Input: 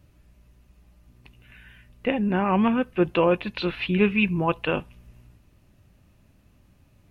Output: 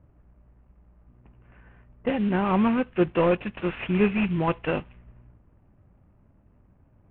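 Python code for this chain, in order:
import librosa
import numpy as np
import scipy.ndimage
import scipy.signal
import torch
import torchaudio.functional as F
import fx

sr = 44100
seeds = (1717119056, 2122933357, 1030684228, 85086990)

y = fx.cvsd(x, sr, bps=16000)
y = fx.env_lowpass(y, sr, base_hz=900.0, full_db=-22.0)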